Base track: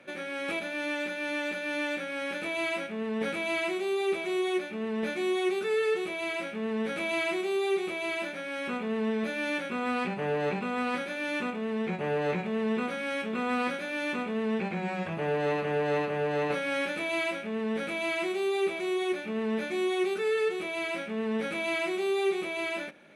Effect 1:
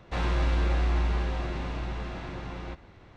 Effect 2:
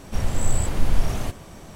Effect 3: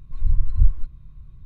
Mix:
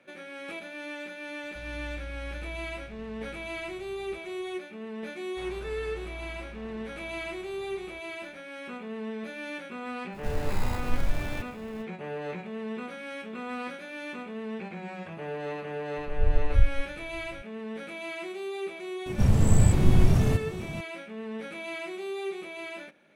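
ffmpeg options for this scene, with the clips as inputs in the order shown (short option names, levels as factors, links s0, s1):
-filter_complex "[1:a]asplit=2[s0][s1];[2:a]asplit=2[s2][s3];[0:a]volume=0.473[s4];[s0]acrossover=split=160|3000[s5][s6][s7];[s6]acompressor=threshold=0.00562:ratio=6:attack=3.2:release=140:knee=2.83:detection=peak[s8];[s5][s8][s7]amix=inputs=3:normalize=0[s9];[s2]acrusher=samples=15:mix=1:aa=0.000001[s10];[s3]equalizer=f=140:w=0.52:g=14[s11];[s9]atrim=end=3.16,asetpts=PTS-STARTPTS,volume=0.211,afade=t=in:d=0.004:c=hsin,afade=t=out:st=3.156:d=0.004:c=hsin,adelay=1430[s12];[s1]atrim=end=3.16,asetpts=PTS-STARTPTS,volume=0.158,afade=t=in:d=0.004:c=hsin,afade=t=out:st=3.156:d=0.004:c=hsin,adelay=231525S[s13];[s10]atrim=end=1.75,asetpts=PTS-STARTPTS,volume=0.422,afade=t=in:d=0.05,afade=t=out:st=1.7:d=0.05,adelay=10110[s14];[3:a]atrim=end=1.45,asetpts=PTS-STARTPTS,volume=0.562,afade=t=in:d=0.004:c=hsin,afade=t=out:st=1.446:d=0.004:c=hsin,adelay=15970[s15];[s11]atrim=end=1.75,asetpts=PTS-STARTPTS,volume=0.631,afade=t=in:d=0.004:c=hsin,afade=t=out:st=1.746:d=0.004:c=hsin,adelay=19060[s16];[s4][s12][s13][s14][s15][s16]amix=inputs=6:normalize=0"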